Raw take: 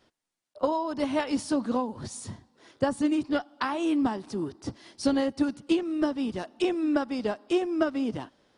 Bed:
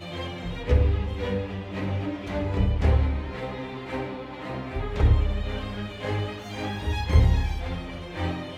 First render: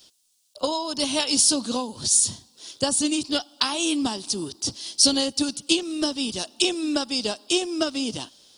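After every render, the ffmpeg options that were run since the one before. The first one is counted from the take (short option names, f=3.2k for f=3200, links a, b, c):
-af "aexciter=amount=8.2:drive=6.7:freq=2.9k"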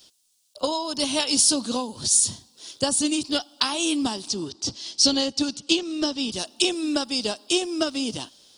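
-filter_complex "[0:a]asettb=1/sr,asplit=3[a][b][c];[a]atrim=end=4.284[d];[b]atrim=start=4.28:end=6.32,asetpts=PTS-STARTPTS,afade=t=in:d=0.004:c=qsin,afade=t=out:st=2.036:d=0.004:c=qsin,lowpass=f=7.2k:w=0.5412,lowpass=f=7.2k:w=1.3066[e];[c]atrim=start=6.316[f];[d][e]acrossfade=d=0.004:c1=hsin:c2=qsin[g];[g][f]acrossfade=d=0.004:c1=qsin:c2=hsin"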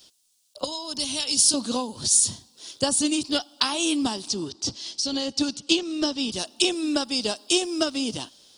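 -filter_complex "[0:a]asettb=1/sr,asplit=3[a][b][c];[a]atrim=end=0.644[d];[b]atrim=start=0.64:end=1.54,asetpts=PTS-STARTPTS,afade=t=in:d=0.004:c=qsin,afade=t=out:st=0.896:d=0.004:c=qsin,acrossover=split=170|3000[e][f][g];[f]acompressor=threshold=-37dB:ratio=3:attack=3.2:release=140:knee=2.83:detection=peak[h];[e][h][g]amix=inputs=3:normalize=0[i];[c]atrim=start=1.536[j];[d][i]acrossfade=d=0.004:c1=hsin:c2=qsin[k];[k][j]acrossfade=d=0.004:c1=qsin:c2=hsin,asettb=1/sr,asplit=3[l][m][n];[l]atrim=end=4.814[o];[m]atrim=start=4.81:end=5.38,asetpts=PTS-STARTPTS,afade=t=in:d=0.004:c=qsin,afade=t=out:st=0.566:d=0.004:c=qsin,acompressor=threshold=-22dB:ratio=12:attack=3.2:release=140:knee=1:detection=peak[p];[n]atrim=start=5.376[q];[o][p]acrossfade=d=0.004:c1=hsin:c2=qsin[r];[r][q]acrossfade=d=0.004:c1=qsin:c2=hsin,asettb=1/sr,asplit=3[s][t][u];[s]atrim=end=7.294[v];[t]atrim=start=7.29:end=7.86,asetpts=PTS-STARTPTS,afade=t=in:d=0.004:c=qsin,afade=t=out:st=0.566:d=0.004:c=qsin,bass=f=250:g=-1,treble=f=4k:g=3[w];[u]atrim=start=7.856[x];[v][w]acrossfade=d=0.004:c1=hsin:c2=qsin[y];[y][x]acrossfade=d=0.004:c1=qsin:c2=hsin"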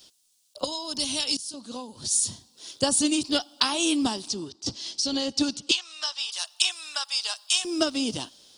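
-filter_complex "[0:a]asettb=1/sr,asplit=3[a][b][c];[a]atrim=end=5.714[d];[b]atrim=start=5.71:end=7.65,asetpts=PTS-STARTPTS,afade=t=in:d=0.004:c=qsin,afade=t=out:st=1.936:d=0.004:c=qsin,highpass=f=940:w=0.5412,highpass=f=940:w=1.3066[e];[c]atrim=start=7.646[f];[d][e]acrossfade=d=0.004:c1=hsin:c2=qsin[g];[g][f]acrossfade=d=0.004:c1=qsin:c2=hsin,asplit=3[h][i][j];[h]atrim=end=1.37,asetpts=PTS-STARTPTS,afade=t=out:st=1.366:d=0.004:c=hsin:silence=0.0749894[k];[i]atrim=start=1.37:end=4.66,asetpts=PTS-STARTPTS,afade=t=in:d=1.51:silence=0.0749894,afade=t=out:st=2.72:d=0.57:silence=0.316228[l];[j]atrim=start=4.66,asetpts=PTS-STARTPTS,afade=t=in:d=0.004:c=hsin:silence=0.316228[m];[k][l][m]concat=n=3:v=0:a=1"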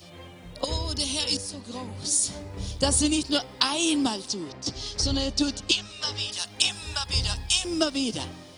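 -filter_complex "[1:a]volume=-11.5dB[a];[0:a][a]amix=inputs=2:normalize=0"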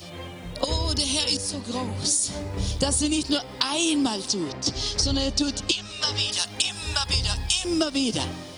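-filter_complex "[0:a]asplit=2[a][b];[b]alimiter=limit=-13.5dB:level=0:latency=1:release=423,volume=2dB[c];[a][c]amix=inputs=2:normalize=0,acompressor=threshold=-20dB:ratio=6"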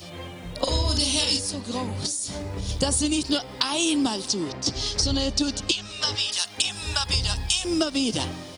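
-filter_complex "[0:a]asplit=3[a][b][c];[a]afade=t=out:st=0.66:d=0.02[d];[b]asplit=2[e][f];[f]adelay=44,volume=-4.5dB[g];[e][g]amix=inputs=2:normalize=0,afade=t=in:st=0.66:d=0.02,afade=t=out:st=1.39:d=0.02[h];[c]afade=t=in:st=1.39:d=0.02[i];[d][h][i]amix=inputs=3:normalize=0,asettb=1/sr,asplit=3[j][k][l];[j]atrim=end=2.064[m];[k]atrim=start=2.06:end=2.69,asetpts=PTS-STARTPTS,afade=t=in:d=0.004:c=qsin,afade=t=out:st=0.626:d=0.004:c=qsin,acompressor=threshold=-27dB:ratio=3:attack=3.2:release=140:knee=1:detection=peak[n];[l]atrim=start=2.686[o];[m][n]acrossfade=d=0.004:c1=hsin:c2=qsin[p];[p][o]acrossfade=d=0.004:c1=qsin:c2=hsin,asettb=1/sr,asplit=3[q][r][s];[q]atrim=end=6.154[t];[r]atrim=start=6.15:end=6.58,asetpts=PTS-STARTPTS,afade=t=in:d=0.004:c=qsin,afade=t=out:st=0.426:d=0.004:c=qsin,lowshelf=f=450:g=-11.5[u];[s]atrim=start=6.576[v];[t][u]acrossfade=d=0.004:c1=hsin:c2=qsin[w];[w][v]acrossfade=d=0.004:c1=qsin:c2=hsin"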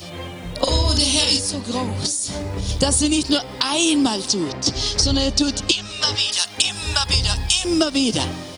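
-af "volume=5.5dB,alimiter=limit=-1dB:level=0:latency=1"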